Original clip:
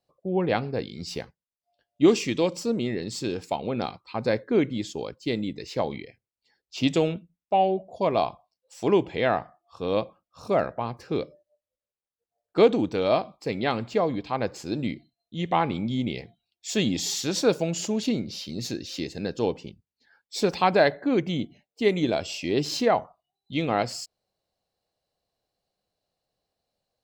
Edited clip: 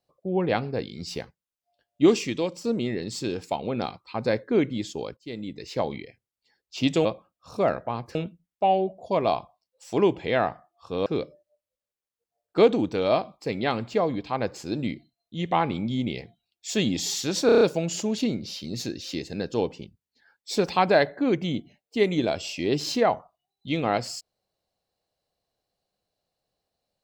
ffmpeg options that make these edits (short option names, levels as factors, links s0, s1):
-filter_complex "[0:a]asplit=11[s0][s1][s2][s3][s4][s5][s6][s7][s8][s9][s10];[s0]atrim=end=2.64,asetpts=PTS-STARTPTS,afade=t=out:st=2.1:d=0.54:silence=0.473151[s11];[s1]atrim=start=2.64:end=5.17,asetpts=PTS-STARTPTS,afade=t=in:d=0.004:c=hsin:silence=0.473151,afade=t=out:st=2.526:d=0.004:c=hsin:silence=0.141254[s12];[s2]atrim=start=5.17:end=7.052,asetpts=PTS-STARTPTS,afade=t=in:d=0.56:silence=0.141254[s13];[s3]atrim=start=9.958:end=11.062[s14];[s4]atrim=start=7.048:end=9.962[s15];[s5]atrim=start=11.058:end=17.492[s16];[s6]atrim=start=17.458:end=17.492[s17];[s7]atrim=start=17.458:end=17.492[s18];[s8]atrim=start=17.458:end=17.492[s19];[s9]atrim=start=17.458:end=17.492[s20];[s10]atrim=start=17.458[s21];[s11][s12][s13]concat=n=3:v=0:a=1[s22];[s22][s14]acrossfade=d=0.004:c1=hsin:c2=hsin[s23];[s23][s15]acrossfade=d=0.004:c1=hsin:c2=hsin[s24];[s24][s16]acrossfade=d=0.004:c1=hsin:c2=hsin[s25];[s25][s17]acrossfade=d=0.004:c1=hsin:c2=hsin[s26];[s26][s18]acrossfade=d=0.004:c1=hsin:c2=hsin[s27];[s27][s19]acrossfade=d=0.004:c1=hsin:c2=hsin[s28];[s28][s20]acrossfade=d=0.004:c1=hsin:c2=hsin[s29];[s29][s21]acrossfade=d=0.004:c1=hsin:c2=hsin"